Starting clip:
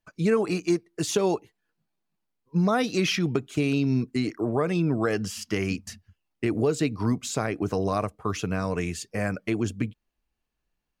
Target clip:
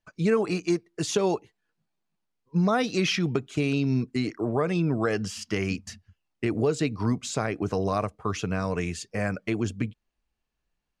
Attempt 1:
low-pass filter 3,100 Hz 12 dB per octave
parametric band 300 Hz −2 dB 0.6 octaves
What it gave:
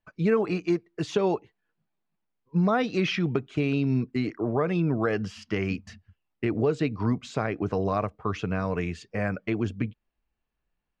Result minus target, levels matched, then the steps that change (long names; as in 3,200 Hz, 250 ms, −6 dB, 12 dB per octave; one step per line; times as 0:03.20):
8,000 Hz band −12.5 dB
change: low-pass filter 8,400 Hz 12 dB per octave